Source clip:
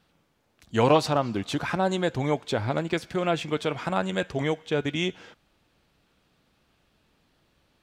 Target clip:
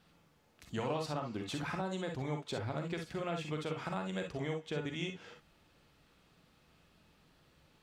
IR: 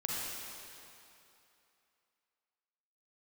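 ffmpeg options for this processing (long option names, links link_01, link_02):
-filter_complex "[0:a]acompressor=threshold=-41dB:ratio=2.5[link_01];[1:a]atrim=start_sample=2205,atrim=end_sample=3087[link_02];[link_01][link_02]afir=irnorm=-1:irlink=0"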